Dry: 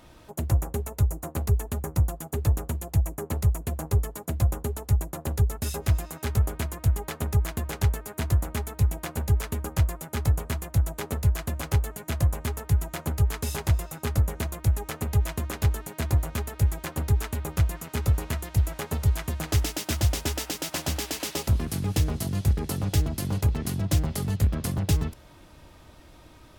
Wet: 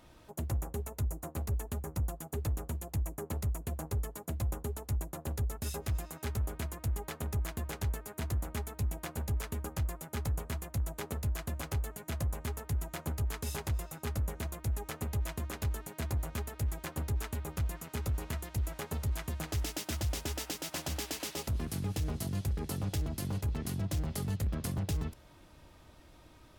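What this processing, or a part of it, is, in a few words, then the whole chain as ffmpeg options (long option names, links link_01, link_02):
limiter into clipper: -af "alimiter=limit=-18.5dB:level=0:latency=1:release=35,asoftclip=type=hard:threshold=-20.5dB,volume=-6.5dB"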